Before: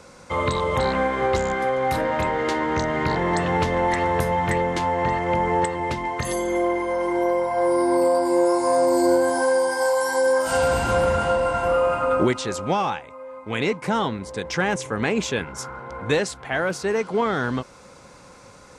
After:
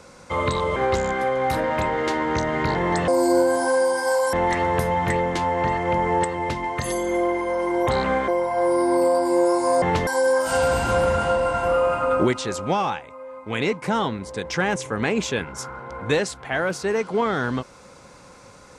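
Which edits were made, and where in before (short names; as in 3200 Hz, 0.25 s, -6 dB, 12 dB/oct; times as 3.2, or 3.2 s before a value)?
0.76–1.17 move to 7.28
3.49–3.74 swap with 8.82–10.07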